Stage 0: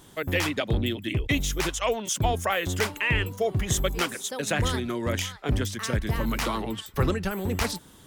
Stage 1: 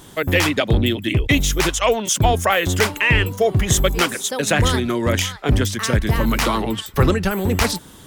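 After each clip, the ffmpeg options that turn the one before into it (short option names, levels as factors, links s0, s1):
-af "acontrast=76,volume=1.26"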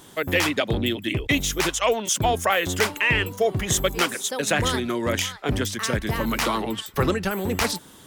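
-af "lowshelf=f=110:g=-11,volume=0.668"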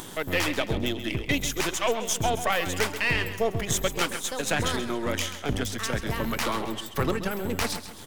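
-af "aeval=exprs='if(lt(val(0),0),0.447*val(0),val(0))':c=same,acompressor=mode=upward:threshold=0.0398:ratio=2.5,aecho=1:1:133|266|399|532:0.266|0.109|0.0447|0.0183,volume=0.794"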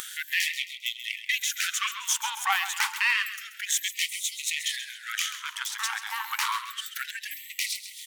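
-af "acompressor=mode=upward:threshold=0.0251:ratio=2.5,bandreject=f=5000:w=25,afftfilt=real='re*gte(b*sr/1024,760*pow(1900/760,0.5+0.5*sin(2*PI*0.29*pts/sr)))':imag='im*gte(b*sr/1024,760*pow(1900/760,0.5+0.5*sin(2*PI*0.29*pts/sr)))':win_size=1024:overlap=0.75,volume=1.26"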